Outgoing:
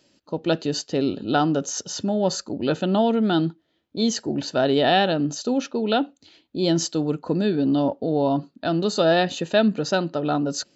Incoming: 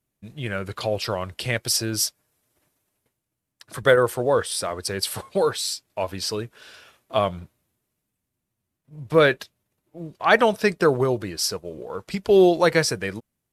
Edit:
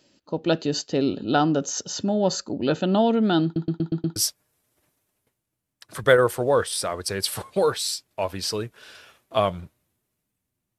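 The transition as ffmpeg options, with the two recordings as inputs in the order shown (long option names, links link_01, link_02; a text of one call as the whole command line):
ffmpeg -i cue0.wav -i cue1.wav -filter_complex "[0:a]apad=whole_dur=10.78,atrim=end=10.78,asplit=6[link_01][link_02][link_03][link_04][link_05][link_06];[link_01]atrim=end=3.562[link_07];[link_02]atrim=start=3.438:end=3.562[link_08];[link_03]atrim=start=3.438:end=3.562[link_09];[link_04]atrim=start=3.438:end=3.562[link_10];[link_05]atrim=start=3.438:end=3.562[link_11];[link_06]atrim=start=3.438:end=3.562[link_12];[1:a]atrim=start=1.948:end=8.57[link_13];[link_07][link_08]acrossfade=duration=0.004:curve1=hsin:curve2=hsin[link_14];[link_14][link_09]acrossfade=duration=0.004:curve1=hsin:curve2=hsin[link_15];[link_15][link_10]acrossfade=duration=0.004:curve1=hsin:curve2=hsin[link_16];[link_16][link_11]acrossfade=duration=0.004:curve1=hsin:curve2=hsin[link_17];[link_17][link_12]acrossfade=duration=0.004:curve1=hsin:curve2=hsin[link_18];[link_18][link_13]acrossfade=duration=0.004:curve1=hsin:curve2=hsin" out.wav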